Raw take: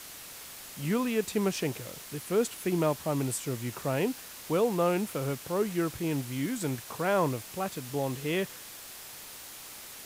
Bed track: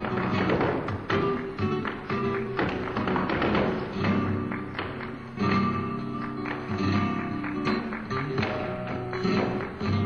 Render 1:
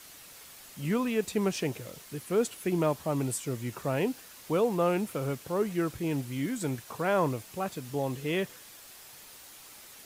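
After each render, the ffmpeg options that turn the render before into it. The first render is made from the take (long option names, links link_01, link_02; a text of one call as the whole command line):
ffmpeg -i in.wav -af "afftdn=noise_reduction=6:noise_floor=-46" out.wav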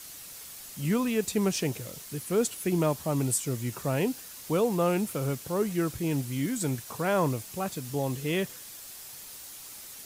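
ffmpeg -i in.wav -af "bass=frequency=250:gain=4,treble=frequency=4000:gain=7" out.wav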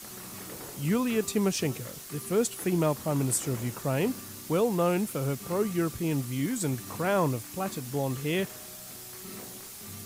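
ffmpeg -i in.wav -i bed.wav -filter_complex "[1:a]volume=-20dB[link_01];[0:a][link_01]amix=inputs=2:normalize=0" out.wav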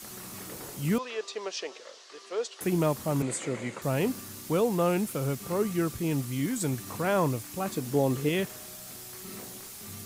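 ffmpeg -i in.wav -filter_complex "[0:a]asettb=1/sr,asplit=3[link_01][link_02][link_03];[link_01]atrim=end=0.984[link_04];[link_02]atrim=start=0.98:end=2.61,asetpts=PTS-STARTPTS,afade=type=in:duration=0.004:curve=qsin,afade=type=out:start_time=1.626:duration=0.004:curve=qsin,highpass=frequency=480:width=0.5412,highpass=frequency=480:width=1.3066,equalizer=frequency=780:width_type=q:width=4:gain=-4,equalizer=frequency=1400:width_type=q:width=4:gain=-4,equalizer=frequency=2300:width_type=q:width=4:gain=-5,lowpass=frequency=5500:width=0.5412,lowpass=frequency=5500:width=1.3066[link_05];[link_03]atrim=start=2.606[link_06];[link_04][link_05]acrossfade=duration=0.004:curve1=hsin:curve2=qsin[link_07];[link_07][link_06]acrossfade=duration=0.004:curve1=qsin:curve2=hsin,asettb=1/sr,asplit=3[link_08][link_09][link_10];[link_08]atrim=end=3.224[link_11];[link_09]atrim=start=3.22:end=3.82,asetpts=PTS-STARTPTS,afade=type=in:duration=0.004:curve=qsin,afade=type=out:start_time=0.596:duration=0.004:curve=qsin,highpass=180,equalizer=frequency=530:width_type=q:width=4:gain=7,equalizer=frequency=2100:width_type=q:width=4:gain=9,equalizer=frequency=5500:width_type=q:width=4:gain=-10,lowpass=frequency=7600:width=0.5412,lowpass=frequency=7600:width=1.3066[link_12];[link_10]atrim=start=3.816[link_13];[link_11][link_12]acrossfade=duration=0.004:curve1=hsin:curve2=qsin[link_14];[link_14][link_13]acrossfade=duration=0.004:curve1=qsin:curve2=hsin,asettb=1/sr,asplit=3[link_15][link_16][link_17];[link_15]atrim=end=7.774[link_18];[link_16]atrim=start=7.77:end=8.29,asetpts=PTS-STARTPTS,afade=type=in:duration=0.004:curve=qsin,afade=type=out:start_time=0.516:duration=0.004:curve=qsin,equalizer=frequency=370:width_type=o:width=1.9:gain=7[link_19];[link_17]atrim=start=8.286[link_20];[link_18][link_19]acrossfade=duration=0.004:curve1=hsin:curve2=qsin[link_21];[link_21][link_20]acrossfade=duration=0.004:curve1=qsin:curve2=hsin" out.wav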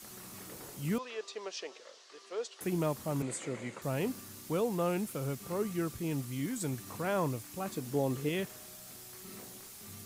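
ffmpeg -i in.wav -af "volume=-6dB" out.wav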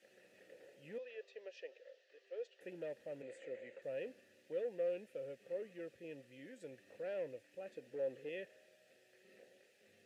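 ffmpeg -i in.wav -filter_complex "[0:a]volume=28dB,asoftclip=hard,volume=-28dB,asplit=3[link_01][link_02][link_03];[link_01]bandpass=frequency=530:width_type=q:width=8,volume=0dB[link_04];[link_02]bandpass=frequency=1840:width_type=q:width=8,volume=-6dB[link_05];[link_03]bandpass=frequency=2480:width_type=q:width=8,volume=-9dB[link_06];[link_04][link_05][link_06]amix=inputs=3:normalize=0" out.wav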